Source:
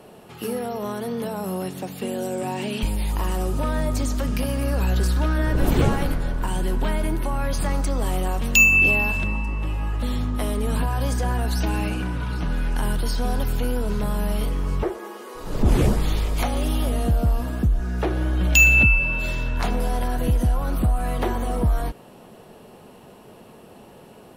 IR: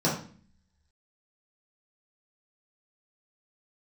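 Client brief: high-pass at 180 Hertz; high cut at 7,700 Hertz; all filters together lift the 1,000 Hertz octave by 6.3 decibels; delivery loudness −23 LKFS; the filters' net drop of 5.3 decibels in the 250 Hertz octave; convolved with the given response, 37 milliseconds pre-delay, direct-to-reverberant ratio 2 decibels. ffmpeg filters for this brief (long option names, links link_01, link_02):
-filter_complex "[0:a]highpass=180,lowpass=7700,equalizer=frequency=250:width_type=o:gain=-5.5,equalizer=frequency=1000:width_type=o:gain=8.5,asplit=2[link_01][link_02];[1:a]atrim=start_sample=2205,adelay=37[link_03];[link_02][link_03]afir=irnorm=-1:irlink=0,volume=-14.5dB[link_04];[link_01][link_04]amix=inputs=2:normalize=0,volume=-1dB"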